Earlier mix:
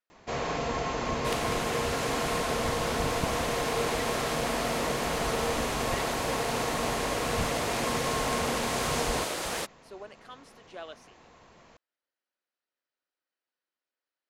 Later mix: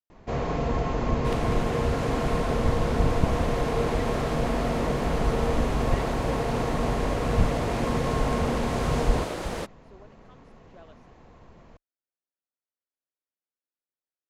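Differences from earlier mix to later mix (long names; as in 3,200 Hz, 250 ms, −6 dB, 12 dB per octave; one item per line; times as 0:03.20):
speech −11.0 dB
master: add spectral tilt −3 dB per octave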